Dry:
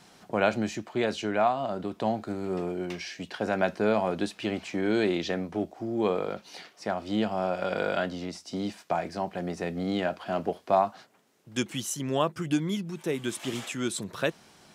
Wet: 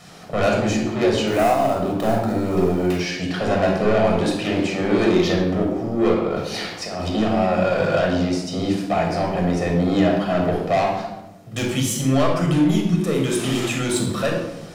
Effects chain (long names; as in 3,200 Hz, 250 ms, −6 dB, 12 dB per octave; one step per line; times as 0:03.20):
0:01.27–0:02.97: gap after every zero crossing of 0.075 ms
0:06.14–0:07.15: compressor whose output falls as the input rises −38 dBFS, ratio −1
soft clipping −26.5 dBFS, distortion −8 dB
rectangular room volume 3,700 cubic metres, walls furnished, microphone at 6.3 metres
level +7 dB